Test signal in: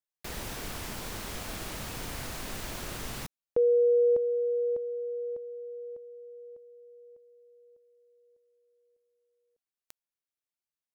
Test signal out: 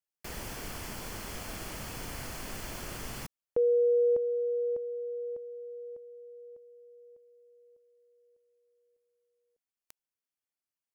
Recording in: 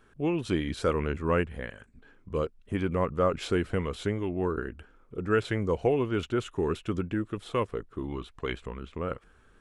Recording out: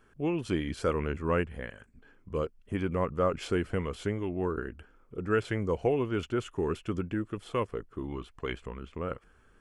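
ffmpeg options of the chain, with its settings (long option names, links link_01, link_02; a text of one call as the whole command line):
ffmpeg -i in.wav -af "bandreject=frequency=3800:width=6.9,volume=-2dB" out.wav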